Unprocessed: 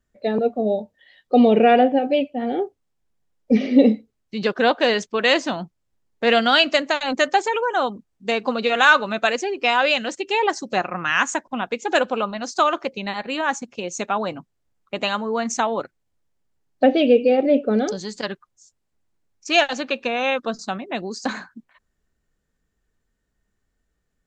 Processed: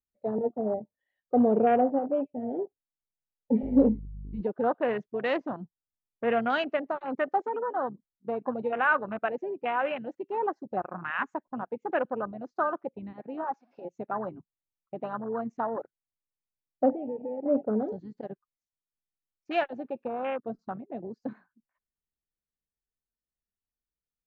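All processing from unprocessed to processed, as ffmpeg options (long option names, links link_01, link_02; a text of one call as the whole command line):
ffmpeg -i in.wav -filter_complex "[0:a]asettb=1/sr,asplit=3[link_01][link_02][link_03];[link_01]atrim=end=3.634[link_04];[link_02]atrim=start=3.63:end=4.41,asetpts=PTS-STARTPTS,afade=type=in:duration=0.004:curve=qsin,afade=type=out:start_time=0.776:duration=0.004:curve=qsin,aeval=exprs='val(0)+0.0316*(sin(2*PI*50*n/s)+sin(2*PI*2*50*n/s)/2+sin(2*PI*3*50*n/s)/3+sin(2*PI*4*50*n/s)/4+sin(2*PI*5*50*n/s)/5)':channel_layout=same,asplit=2[link_05][link_06];[link_06]adelay=15,volume=-10.5dB[link_07];[link_05][link_07]amix=inputs=2:normalize=0,atrim=end_sample=34398[link_08];[link_03]atrim=start=4.406[link_09];[link_04][link_08]acrossfade=duration=0.004:curve1=hsin:curve2=qsin[link_10];[link_10][link_09]acrossfade=duration=0.004:curve1=qsin:curve2=hsin,asettb=1/sr,asplit=3[link_11][link_12][link_13];[link_11]atrim=end=13.444[link_14];[link_12]atrim=start=13.44:end=13.85,asetpts=PTS-STARTPTS,afade=type=in:duration=0.004:curve=qsin,afade=type=out:start_time=0.406:duration=0.004:curve=qsin,aeval=exprs='val(0)+0.5*0.0251*sgn(val(0))':channel_layout=same,highpass=380,equalizer=frequency=450:width_type=q:width=4:gain=-7,equalizer=frequency=810:width_type=q:width=4:gain=3,equalizer=frequency=1200:width_type=q:width=4:gain=-9,equalizer=frequency=1900:width_type=q:width=4:gain=-7,equalizer=frequency=3100:width_type=q:width=4:gain=-6,equalizer=frequency=5100:width_type=q:width=4:gain=8,lowpass=frequency=6000:width=0.5412,lowpass=frequency=6000:width=1.3066[link_15];[link_13]atrim=start=13.846[link_16];[link_14][link_15]acrossfade=duration=0.004:curve1=hsin:curve2=qsin[link_17];[link_17][link_16]acrossfade=duration=0.004:curve1=qsin:curve2=hsin,asettb=1/sr,asplit=3[link_18][link_19][link_20];[link_18]atrim=end=16.914[link_21];[link_19]atrim=start=16.91:end=17.46,asetpts=PTS-STARTPTS,afade=type=in:duration=0.004:curve=qsin,afade=type=out:start_time=0.546:duration=0.004:curve=qsin,lowpass=frequency=2700:width=0.5412,lowpass=frequency=2700:width=1.3066,acompressor=threshold=-24dB:ratio=5:attack=3.2:release=140:knee=1:detection=peak[link_22];[link_20]atrim=start=17.456[link_23];[link_21][link_22]acrossfade=duration=0.004:curve1=hsin:curve2=qsin[link_24];[link_24][link_23]acrossfade=duration=0.004:curve1=qsin:curve2=hsin,afwtdn=0.0794,lowpass=1600,volume=-8dB" out.wav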